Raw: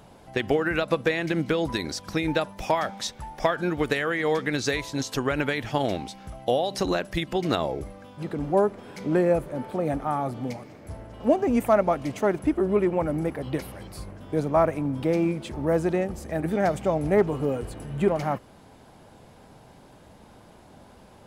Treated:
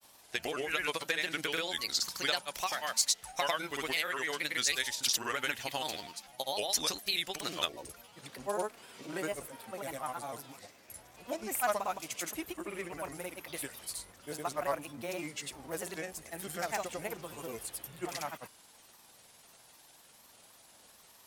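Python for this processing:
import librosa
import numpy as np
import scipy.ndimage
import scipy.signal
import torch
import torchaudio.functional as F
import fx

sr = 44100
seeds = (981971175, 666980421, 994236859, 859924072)

y = librosa.effects.preemphasis(x, coef=0.97, zi=[0.0])
y = fx.granulator(y, sr, seeds[0], grain_ms=100.0, per_s=20.0, spray_ms=100.0, spread_st=3)
y = y * 10.0 ** (8.5 / 20.0)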